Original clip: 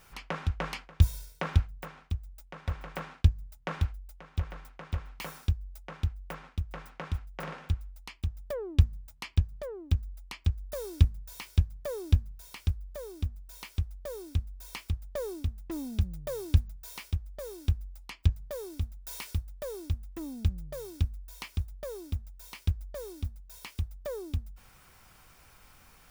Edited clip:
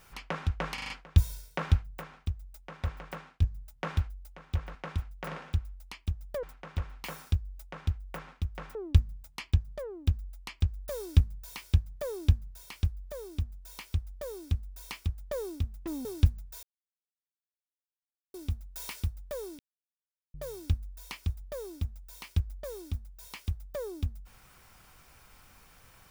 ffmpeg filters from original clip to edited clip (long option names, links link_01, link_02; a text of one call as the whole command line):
ffmpeg -i in.wav -filter_complex "[0:a]asplit=14[link_01][link_02][link_03][link_04][link_05][link_06][link_07][link_08][link_09][link_10][link_11][link_12][link_13][link_14];[link_01]atrim=end=0.782[link_15];[link_02]atrim=start=0.738:end=0.782[link_16];[link_03]atrim=start=0.738:end=0.782[link_17];[link_04]atrim=start=0.738:end=0.782[link_18];[link_05]atrim=start=0.738:end=3.26,asetpts=PTS-STARTPTS,afade=type=out:start_time=1.962:duration=0.56:silence=0.354813[link_19];[link_06]atrim=start=3.26:end=4.592,asetpts=PTS-STARTPTS,afade=type=in:duration=0.004:curve=hsin:silence=0.354813[link_20];[link_07]atrim=start=6.908:end=8.592[link_21];[link_08]atrim=start=4.588:end=6.912[link_22];[link_09]atrim=start=8.588:end=15.892[link_23];[link_10]atrim=start=16.358:end=16.94,asetpts=PTS-STARTPTS,afade=type=out:start_time=0.578:duration=0.004:curve=hsin[link_24];[link_11]atrim=start=16.94:end=18.65,asetpts=PTS-STARTPTS,volume=0[link_25];[link_12]atrim=start=18.65:end=19.9,asetpts=PTS-STARTPTS,afade=type=in:duration=0.004:curve=hsin,afade=type=out:start_time=1.246:duration=0.004:curve=hsin[link_26];[link_13]atrim=start=19.9:end=20.65,asetpts=PTS-STARTPTS,volume=0[link_27];[link_14]atrim=start=20.65,asetpts=PTS-STARTPTS,afade=type=in:duration=0.004:curve=hsin[link_28];[link_15][link_16]acrossfade=duration=0.004:curve1=hsin:curve2=hsin[link_29];[link_29][link_17]acrossfade=duration=0.004:curve1=hsin:curve2=hsin[link_30];[link_30][link_18]acrossfade=duration=0.004:curve1=hsin:curve2=hsin[link_31];[link_19][link_20]concat=n=2:v=0:a=1[link_32];[link_31][link_32]acrossfade=duration=0.004:curve1=hsin:curve2=hsin[link_33];[link_33][link_21]acrossfade=duration=0.004:curve1=hsin:curve2=hsin[link_34];[link_34][link_22]acrossfade=duration=0.004:curve1=hsin:curve2=hsin[link_35];[link_35][link_23]acrossfade=duration=0.004:curve1=hsin:curve2=hsin[link_36];[link_24][link_25][link_26][link_27][link_28]concat=n=5:v=0:a=1[link_37];[link_36][link_37]acrossfade=duration=0.004:curve1=hsin:curve2=hsin" out.wav